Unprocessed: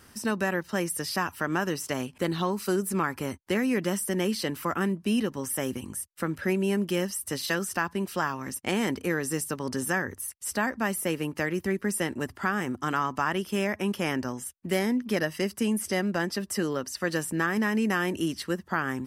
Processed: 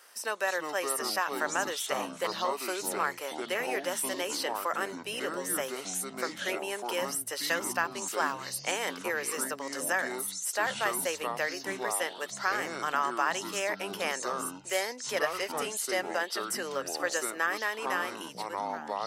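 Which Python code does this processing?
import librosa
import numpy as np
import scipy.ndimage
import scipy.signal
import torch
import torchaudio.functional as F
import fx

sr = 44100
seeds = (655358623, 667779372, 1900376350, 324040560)

y = fx.fade_out_tail(x, sr, length_s=1.5)
y = scipy.signal.sosfilt(scipy.signal.cheby1(3, 1.0, 530.0, 'highpass', fs=sr, output='sos'), y)
y = fx.echo_pitch(y, sr, ms=246, semitones=-6, count=3, db_per_echo=-6.0)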